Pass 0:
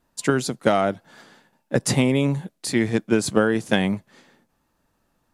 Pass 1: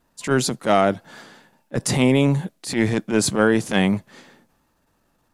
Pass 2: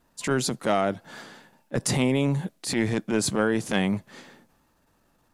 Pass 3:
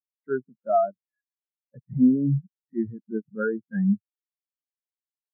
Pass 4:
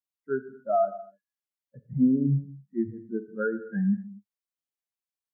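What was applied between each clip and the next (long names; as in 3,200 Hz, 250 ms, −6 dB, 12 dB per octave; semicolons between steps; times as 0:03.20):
transient designer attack −11 dB, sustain +3 dB; level +3.5 dB
downward compressor 2 to 1, threshold −24 dBFS, peak gain reduction 7 dB
low-pass with resonance 1,700 Hz, resonance Q 2.2; every bin expanded away from the loudest bin 4 to 1; level −4 dB
reverb whose tail is shaped and stops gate 290 ms falling, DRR 9.5 dB; level −2 dB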